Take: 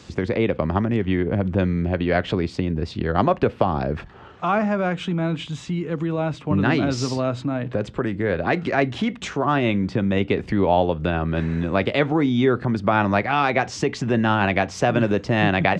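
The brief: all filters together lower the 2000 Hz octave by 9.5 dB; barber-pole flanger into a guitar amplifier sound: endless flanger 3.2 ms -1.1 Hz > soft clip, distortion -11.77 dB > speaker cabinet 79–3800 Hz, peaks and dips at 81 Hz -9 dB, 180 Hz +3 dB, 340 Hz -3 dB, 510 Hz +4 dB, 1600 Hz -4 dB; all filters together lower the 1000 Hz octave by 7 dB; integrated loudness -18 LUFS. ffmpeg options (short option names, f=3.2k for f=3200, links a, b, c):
-filter_complex "[0:a]equalizer=f=1k:t=o:g=-9,equalizer=f=2k:t=o:g=-7,asplit=2[a][b];[b]adelay=3.2,afreqshift=-1.1[c];[a][c]amix=inputs=2:normalize=1,asoftclip=threshold=-23dB,highpass=79,equalizer=f=81:t=q:w=4:g=-9,equalizer=f=180:t=q:w=4:g=3,equalizer=f=340:t=q:w=4:g=-3,equalizer=f=510:t=q:w=4:g=4,equalizer=f=1.6k:t=q:w=4:g=-4,lowpass=f=3.8k:w=0.5412,lowpass=f=3.8k:w=1.3066,volume=12dB"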